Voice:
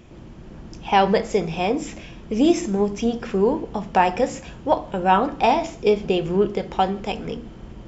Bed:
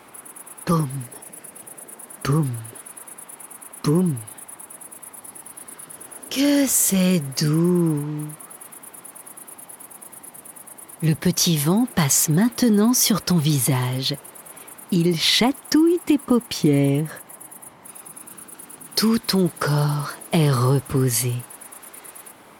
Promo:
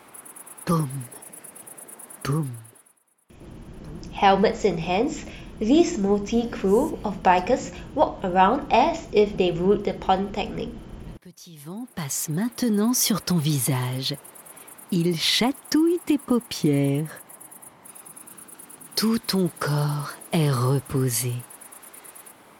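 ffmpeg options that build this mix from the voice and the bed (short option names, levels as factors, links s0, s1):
-filter_complex "[0:a]adelay=3300,volume=0.944[s0];[1:a]volume=10.6,afade=t=out:st=2.13:d=0.86:silence=0.0630957,afade=t=in:st=11.51:d=1.49:silence=0.0707946[s1];[s0][s1]amix=inputs=2:normalize=0"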